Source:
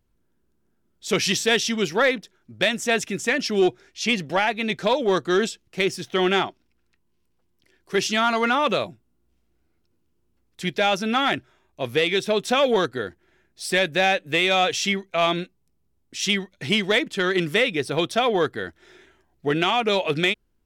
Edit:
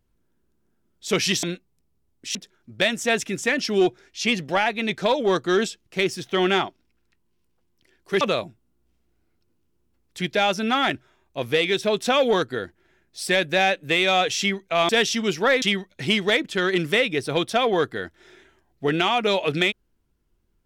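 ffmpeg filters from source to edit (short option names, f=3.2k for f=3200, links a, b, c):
-filter_complex "[0:a]asplit=6[a][b][c][d][e][f];[a]atrim=end=1.432[g];[b]atrim=start=15.318:end=16.242[h];[c]atrim=start=2.158:end=8.022[i];[d]atrim=start=8.638:end=15.322[j];[e]atrim=start=1.428:end=2.162[k];[f]atrim=start=16.238[l];[g][h]acrossfade=d=0.004:c1=hsin:c2=hsin[m];[m][i]acrossfade=d=0.004:c1=hsin:c2=hsin[n];[n][j]acrossfade=d=0.004:c1=hsin:c2=hsin[o];[o][k]acrossfade=d=0.004:c1=hsin:c2=hsin[p];[p][l]acrossfade=d=0.004:c1=hsin:c2=hsin"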